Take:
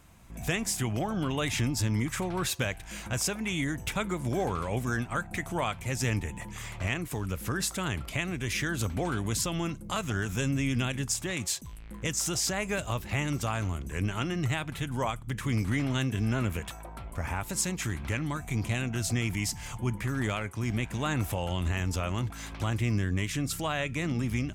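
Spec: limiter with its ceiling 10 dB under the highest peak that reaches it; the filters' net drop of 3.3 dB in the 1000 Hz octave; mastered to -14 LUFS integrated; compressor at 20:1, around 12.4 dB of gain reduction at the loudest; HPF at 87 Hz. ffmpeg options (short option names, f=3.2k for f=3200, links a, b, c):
-af "highpass=87,equalizer=f=1k:t=o:g=-4.5,acompressor=threshold=-37dB:ratio=20,volume=29dB,alimiter=limit=-3.5dB:level=0:latency=1"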